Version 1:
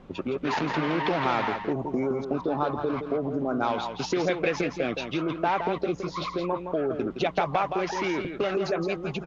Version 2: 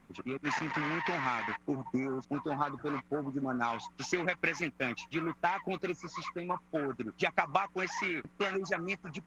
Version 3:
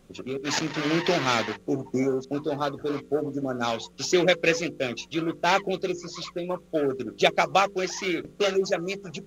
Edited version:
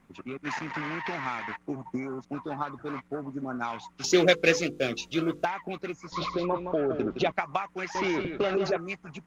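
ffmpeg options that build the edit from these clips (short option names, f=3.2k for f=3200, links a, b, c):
-filter_complex "[0:a]asplit=2[a][b];[1:a]asplit=4[c][d][e][f];[c]atrim=end=4.042[g];[2:a]atrim=start=4.038:end=5.452[h];[d]atrim=start=5.448:end=6.122[i];[a]atrim=start=6.118:end=7.322[j];[e]atrim=start=7.318:end=7.952[k];[b]atrim=start=7.948:end=8.772[l];[f]atrim=start=8.768[m];[g][h]acrossfade=d=0.004:c1=hsin:c2=hsin[n];[n][i]acrossfade=d=0.004:c1=hsin:c2=hsin[o];[o][j]acrossfade=d=0.004:c1=hsin:c2=hsin[p];[p][k]acrossfade=d=0.004:c1=hsin:c2=hsin[q];[q][l]acrossfade=d=0.004:c1=hsin:c2=hsin[r];[r][m]acrossfade=d=0.004:c1=hsin:c2=hsin"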